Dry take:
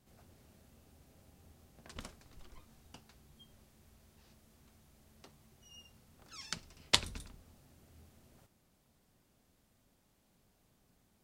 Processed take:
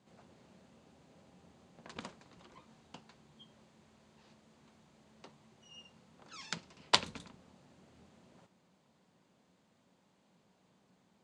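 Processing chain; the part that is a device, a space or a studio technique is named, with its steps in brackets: full-range speaker at full volume (Doppler distortion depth 0.69 ms; speaker cabinet 160–7200 Hz, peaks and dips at 180 Hz +6 dB, 520 Hz +3 dB, 960 Hz +5 dB, 5500 Hz -6 dB); gain +2.5 dB

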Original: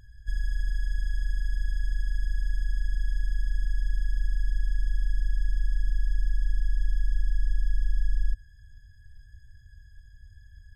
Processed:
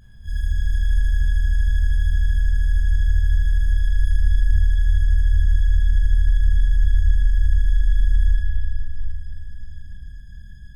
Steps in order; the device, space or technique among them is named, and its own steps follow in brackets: 3.73–4.41 comb 7 ms, depth 42%; shimmer-style reverb (harmoniser +12 st -8 dB; reverb RT60 4.4 s, pre-delay 17 ms, DRR -7 dB)

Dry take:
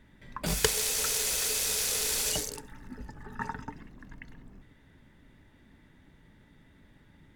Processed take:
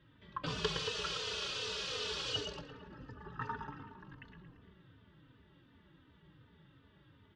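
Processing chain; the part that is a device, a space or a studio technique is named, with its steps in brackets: low shelf 330 Hz +3.5 dB; darkening echo 0.114 s, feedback 64%, low-pass 2700 Hz, level -7 dB; barber-pole flanger into a guitar amplifier (endless flanger 3.2 ms -2.7 Hz; soft clip -22.5 dBFS, distortion -16 dB; speaker cabinet 93–4500 Hz, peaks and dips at 230 Hz -10 dB, 740 Hz -8 dB, 1200 Hz +6 dB, 2100 Hz -9 dB, 3000 Hz +7 dB); gain -1 dB

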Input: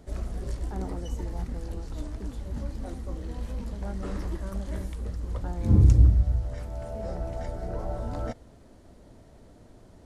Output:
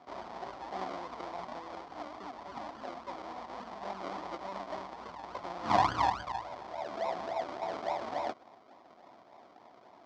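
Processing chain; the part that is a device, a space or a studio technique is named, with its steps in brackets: circuit-bent sampling toy (decimation with a swept rate 40×, swing 60% 3.5 Hz; speaker cabinet 420–4800 Hz, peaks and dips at 470 Hz -5 dB, 720 Hz +9 dB, 1000 Hz +7 dB, 1600 Hz -5 dB, 2700 Hz -9 dB, 3900 Hz -4 dB)

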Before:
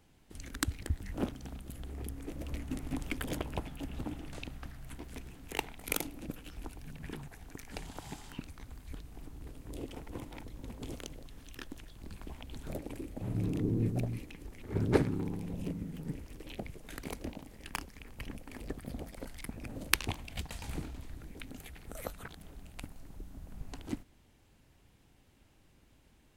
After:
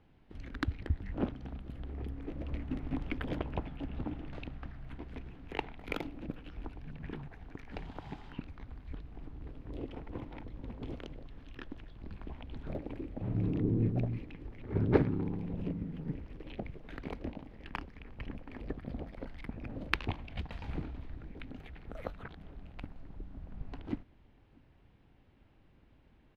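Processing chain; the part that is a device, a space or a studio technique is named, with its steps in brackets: shout across a valley (air absorption 330 m; outdoor echo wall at 110 m, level -28 dB); gain +1.5 dB

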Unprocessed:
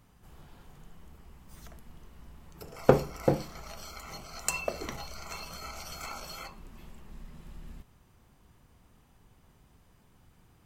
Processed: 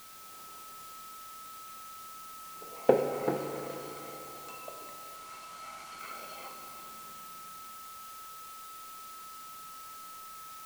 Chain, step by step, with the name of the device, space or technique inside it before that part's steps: shortwave radio (BPF 310–2700 Hz; tremolo 0.31 Hz, depth 79%; LFO notch sine 0.49 Hz 440–1800 Hz; whine 1300 Hz -53 dBFS; white noise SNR 11 dB); 5.16–5.99 LPF 10000 Hz 12 dB/oct; Schroeder reverb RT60 3.5 s, combs from 31 ms, DRR 4 dB

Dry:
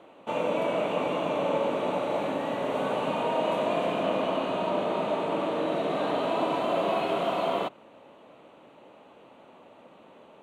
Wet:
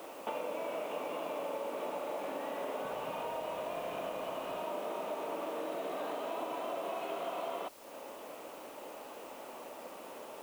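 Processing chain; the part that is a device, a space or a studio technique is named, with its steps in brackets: baby monitor (BPF 320–3600 Hz; compressor 6:1, threshold -43 dBFS, peak gain reduction 18.5 dB; white noise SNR 19 dB); 2.85–4.62 resonant low shelf 170 Hz +9.5 dB, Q 1.5; gain +6 dB

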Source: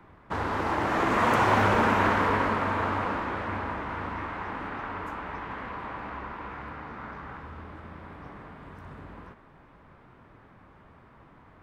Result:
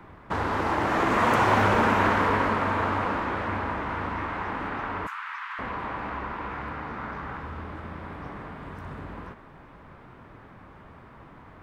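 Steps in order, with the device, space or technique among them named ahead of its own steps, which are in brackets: 5.07–5.59 steep high-pass 1100 Hz 36 dB/oct; parallel compression (in parallel at -0.5 dB: compressor, threshold -37 dBFS, peak gain reduction 17.5 dB)

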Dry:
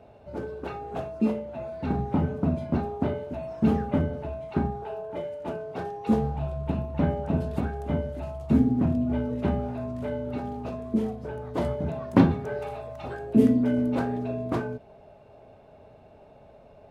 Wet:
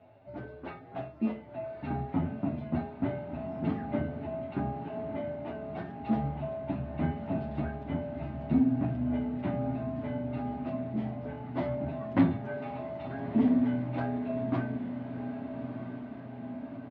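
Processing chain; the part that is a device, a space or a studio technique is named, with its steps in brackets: barber-pole flanger into a guitar amplifier (endless flanger 9 ms +1.4 Hz; soft clip -14 dBFS, distortion -17 dB; speaker cabinet 91–4000 Hz, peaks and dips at 120 Hz +5 dB, 200 Hz -3 dB, 280 Hz +5 dB, 460 Hz -10 dB, 660 Hz +4 dB, 2000 Hz +6 dB); diffused feedback echo 1.265 s, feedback 63%, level -9 dB; gain -3 dB

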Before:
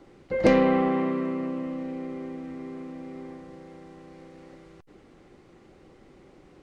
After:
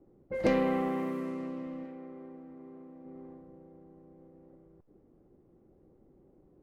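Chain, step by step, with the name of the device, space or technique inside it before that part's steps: 1.85–3.05 tilt +2 dB/oct; cassette deck with a dynamic noise filter (white noise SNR 29 dB; low-pass opened by the level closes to 440 Hz, open at -23 dBFS); gain -7.5 dB

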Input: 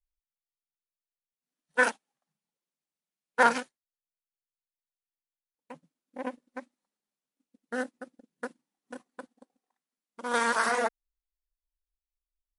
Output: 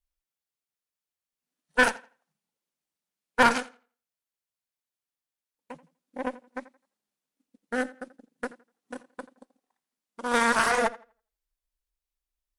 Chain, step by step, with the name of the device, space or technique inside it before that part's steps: rockabilly slapback (tube stage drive 18 dB, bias 0.7; tape echo 84 ms, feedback 25%, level -17.5 dB, low-pass 4400 Hz); gain +7 dB

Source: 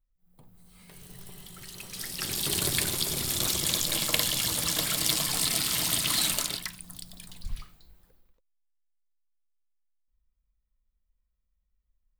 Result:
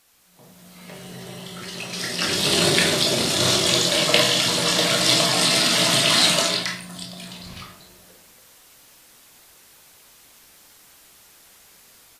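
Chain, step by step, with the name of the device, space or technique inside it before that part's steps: filmed off a television (BPF 160–6100 Hz; bell 610 Hz +10 dB 0.23 oct; reverb RT60 0.45 s, pre-delay 16 ms, DRR 0 dB; white noise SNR 27 dB; AGC gain up to 8 dB; gain +1 dB; AAC 48 kbps 32000 Hz)

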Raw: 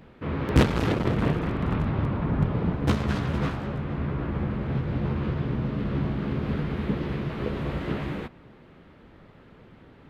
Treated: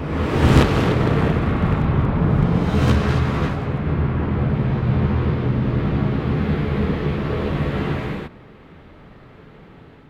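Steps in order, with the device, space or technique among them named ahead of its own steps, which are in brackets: reverse reverb (reverse; reverb RT60 1.9 s, pre-delay 24 ms, DRR -2.5 dB; reverse); gain +3 dB

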